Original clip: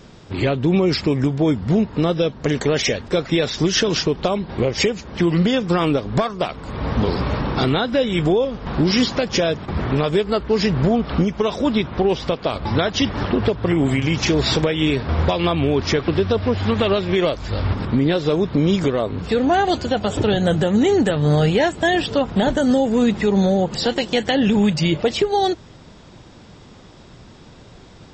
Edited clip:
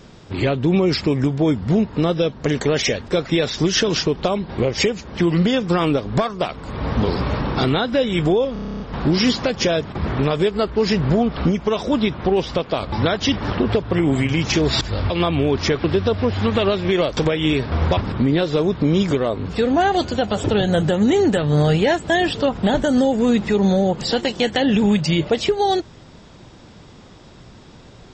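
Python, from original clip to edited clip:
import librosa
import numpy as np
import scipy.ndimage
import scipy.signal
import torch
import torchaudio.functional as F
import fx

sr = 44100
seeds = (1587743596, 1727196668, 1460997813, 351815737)

y = fx.edit(x, sr, fx.stutter(start_s=8.53, slice_s=0.03, count=10),
    fx.swap(start_s=14.54, length_s=0.8, other_s=17.41, other_length_s=0.29), tone=tone)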